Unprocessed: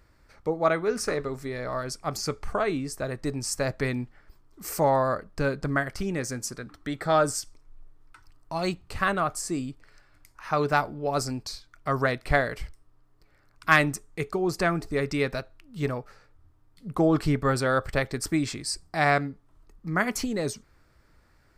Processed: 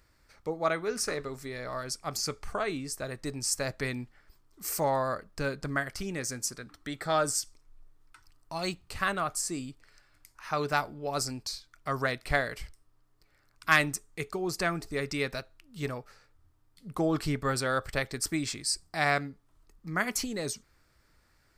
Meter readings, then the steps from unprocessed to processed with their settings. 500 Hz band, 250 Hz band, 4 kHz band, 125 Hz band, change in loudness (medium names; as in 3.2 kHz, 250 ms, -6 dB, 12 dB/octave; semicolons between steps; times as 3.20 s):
-6.0 dB, -6.5 dB, +0.5 dB, -6.5 dB, -4.0 dB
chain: treble shelf 2.1 kHz +8.5 dB; trim -6.5 dB